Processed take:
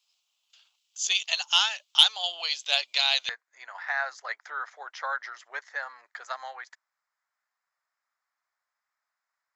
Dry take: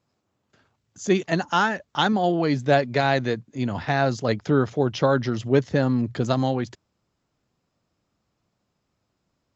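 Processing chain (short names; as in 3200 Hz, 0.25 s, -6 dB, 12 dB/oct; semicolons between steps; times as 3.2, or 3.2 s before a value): Bessel high-pass 1300 Hz, order 6; resonant high shelf 2300 Hz +9 dB, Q 3, from 3.29 s -6 dB; soft clip -1 dBFS, distortion -20 dB; gain -2 dB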